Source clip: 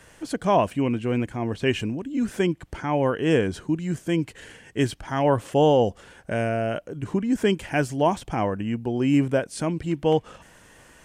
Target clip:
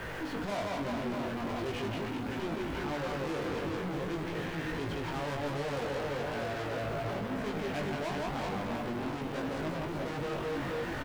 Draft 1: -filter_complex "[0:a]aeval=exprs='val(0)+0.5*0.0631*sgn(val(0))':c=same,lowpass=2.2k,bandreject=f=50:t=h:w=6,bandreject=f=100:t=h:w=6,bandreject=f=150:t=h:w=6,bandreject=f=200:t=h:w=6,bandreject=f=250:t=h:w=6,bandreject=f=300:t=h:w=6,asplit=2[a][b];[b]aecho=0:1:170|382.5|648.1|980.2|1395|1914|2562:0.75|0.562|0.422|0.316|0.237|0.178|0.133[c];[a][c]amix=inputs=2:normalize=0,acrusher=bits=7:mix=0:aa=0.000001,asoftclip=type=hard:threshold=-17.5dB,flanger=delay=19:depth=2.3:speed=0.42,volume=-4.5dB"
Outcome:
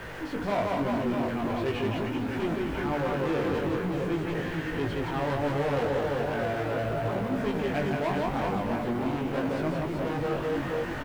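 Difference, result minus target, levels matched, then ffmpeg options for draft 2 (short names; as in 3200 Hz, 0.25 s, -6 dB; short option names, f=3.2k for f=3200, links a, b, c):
hard clip: distortion -6 dB
-filter_complex "[0:a]aeval=exprs='val(0)+0.5*0.0631*sgn(val(0))':c=same,lowpass=2.2k,bandreject=f=50:t=h:w=6,bandreject=f=100:t=h:w=6,bandreject=f=150:t=h:w=6,bandreject=f=200:t=h:w=6,bandreject=f=250:t=h:w=6,bandreject=f=300:t=h:w=6,asplit=2[a][b];[b]aecho=0:1:170|382.5|648.1|980.2|1395|1914|2562:0.75|0.562|0.422|0.316|0.237|0.178|0.133[c];[a][c]amix=inputs=2:normalize=0,acrusher=bits=7:mix=0:aa=0.000001,asoftclip=type=hard:threshold=-26dB,flanger=delay=19:depth=2.3:speed=0.42,volume=-4.5dB"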